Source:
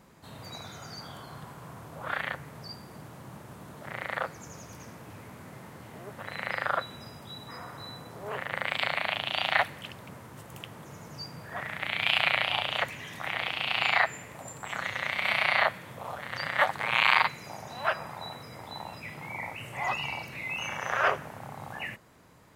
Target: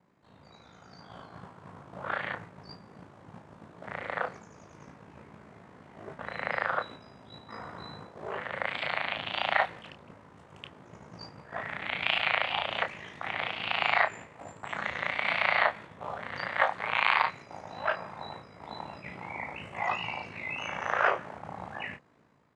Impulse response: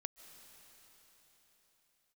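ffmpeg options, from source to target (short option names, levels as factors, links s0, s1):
-filter_complex "[0:a]highpass=120,acrossover=split=390[s0][s1];[s0]alimiter=level_in=7.08:limit=0.0631:level=0:latency=1:release=443,volume=0.141[s2];[s2][s1]amix=inputs=2:normalize=0,lowpass=f=9200:w=0.5412,lowpass=f=9200:w=1.3066,aemphasis=mode=reproduction:type=75kf,dynaudnorm=f=600:g=3:m=2,aeval=exprs='val(0)*sin(2*PI*27*n/s)':c=same,agate=range=0.501:threshold=0.00794:ratio=16:detection=peak,asplit=2[s3][s4];[s4]adelay=28,volume=0.422[s5];[s3][s5]amix=inputs=2:normalize=0,volume=0.794"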